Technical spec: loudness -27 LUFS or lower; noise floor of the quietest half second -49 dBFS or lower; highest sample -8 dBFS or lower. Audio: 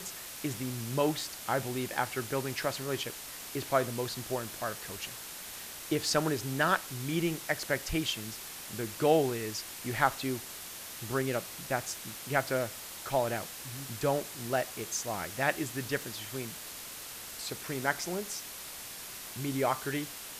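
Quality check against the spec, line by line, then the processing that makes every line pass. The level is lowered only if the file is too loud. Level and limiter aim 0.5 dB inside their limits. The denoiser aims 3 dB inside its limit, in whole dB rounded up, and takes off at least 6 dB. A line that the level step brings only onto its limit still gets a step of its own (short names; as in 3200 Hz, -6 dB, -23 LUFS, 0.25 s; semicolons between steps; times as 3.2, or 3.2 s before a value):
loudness -33.5 LUFS: OK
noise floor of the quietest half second -44 dBFS: fail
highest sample -10.0 dBFS: OK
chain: denoiser 8 dB, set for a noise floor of -44 dBFS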